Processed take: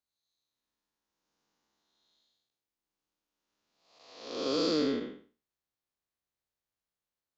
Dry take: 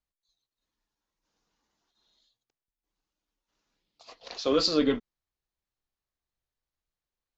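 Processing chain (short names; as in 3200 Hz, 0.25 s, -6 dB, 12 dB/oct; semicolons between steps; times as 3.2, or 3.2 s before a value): time blur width 0.303 s; HPF 210 Hz 6 dB/oct; low shelf 390 Hz +3.5 dB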